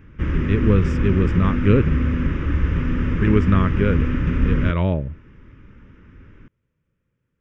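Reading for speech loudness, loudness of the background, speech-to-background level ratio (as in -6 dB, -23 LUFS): -21.0 LUFS, -22.5 LUFS, 1.5 dB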